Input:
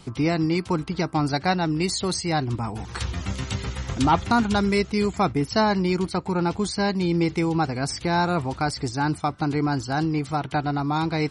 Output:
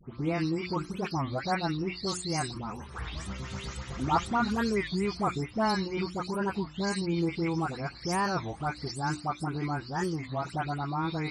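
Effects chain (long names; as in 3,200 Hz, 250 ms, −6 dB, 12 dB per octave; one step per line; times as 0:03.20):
every frequency bin delayed by itself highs late, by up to 256 ms
parametric band 1,200 Hz +3 dB 0.28 octaves
mains-hum notches 60/120/180/240/300/360 Hz
wow of a warped record 33 1/3 rpm, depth 250 cents
level −6.5 dB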